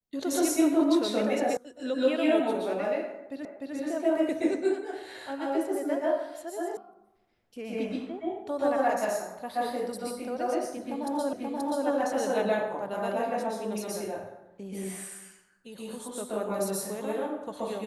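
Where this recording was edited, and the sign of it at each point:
0:01.57: cut off before it has died away
0:03.45: the same again, the last 0.3 s
0:06.77: cut off before it has died away
0:11.33: the same again, the last 0.53 s

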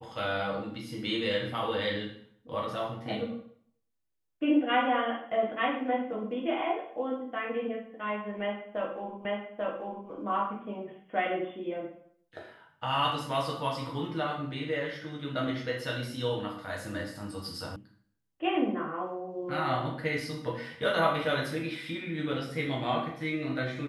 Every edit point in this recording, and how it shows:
0:09.25: the same again, the last 0.84 s
0:17.76: cut off before it has died away

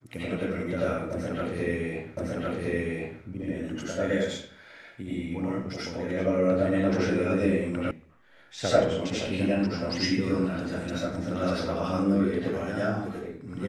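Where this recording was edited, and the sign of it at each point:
0:02.17: the same again, the last 1.06 s
0:07.91: cut off before it has died away

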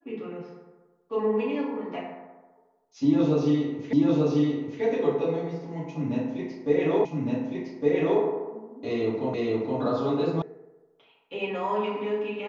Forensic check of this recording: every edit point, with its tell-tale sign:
0:03.93: the same again, the last 0.89 s
0:07.05: the same again, the last 1.16 s
0:09.34: the same again, the last 0.47 s
0:10.42: cut off before it has died away

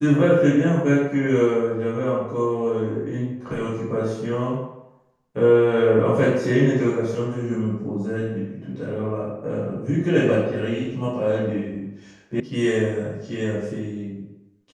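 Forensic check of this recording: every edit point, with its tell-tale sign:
0:12.40: cut off before it has died away

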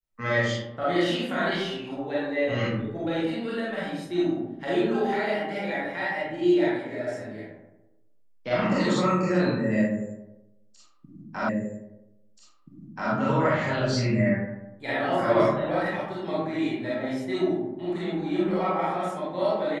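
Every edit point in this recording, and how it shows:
0:11.49: the same again, the last 1.63 s

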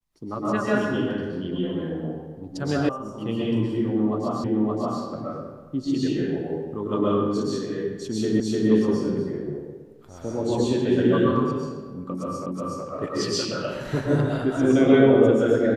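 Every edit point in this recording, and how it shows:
0:02.89: cut off before it has died away
0:04.44: the same again, the last 0.57 s
0:08.40: the same again, the last 0.3 s
0:12.46: the same again, the last 0.37 s

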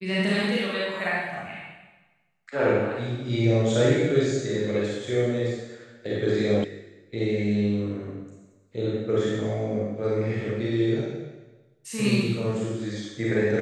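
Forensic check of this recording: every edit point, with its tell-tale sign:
0:06.64: cut off before it has died away

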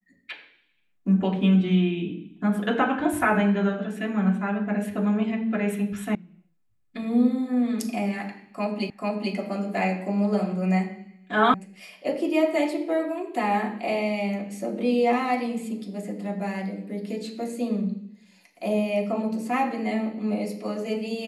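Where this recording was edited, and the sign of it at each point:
0:06.15: cut off before it has died away
0:08.90: the same again, the last 0.44 s
0:11.54: cut off before it has died away

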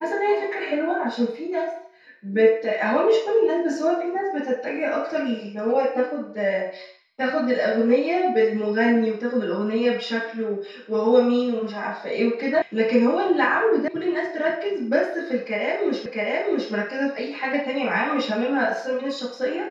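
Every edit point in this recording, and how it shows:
0:12.62: cut off before it has died away
0:13.88: cut off before it has died away
0:16.06: the same again, the last 0.66 s

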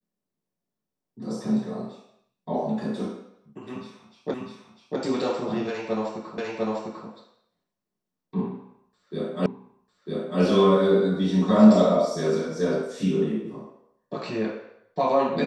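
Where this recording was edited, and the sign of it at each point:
0:04.34: the same again, the last 0.65 s
0:06.38: the same again, the last 0.7 s
0:09.46: the same again, the last 0.95 s

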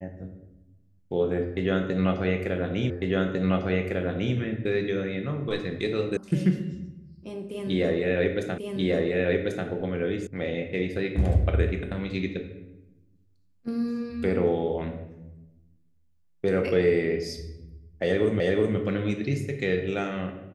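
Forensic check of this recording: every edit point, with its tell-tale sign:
0:02.90: the same again, the last 1.45 s
0:06.17: cut off before it has died away
0:08.58: the same again, the last 1.09 s
0:10.27: cut off before it has died away
0:18.40: the same again, the last 0.37 s

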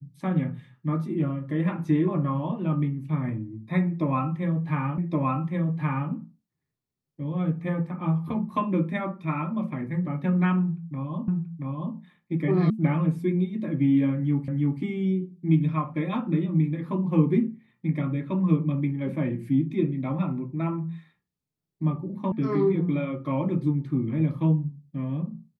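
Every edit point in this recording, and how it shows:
0:04.98: the same again, the last 1.12 s
0:11.28: the same again, the last 0.68 s
0:12.70: cut off before it has died away
0:14.48: the same again, the last 0.33 s
0:22.32: cut off before it has died away

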